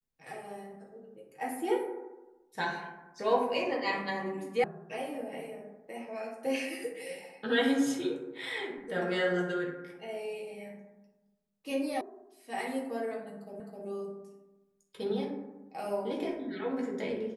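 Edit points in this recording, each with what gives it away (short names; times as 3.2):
4.64 sound cut off
12.01 sound cut off
13.6 repeat of the last 0.26 s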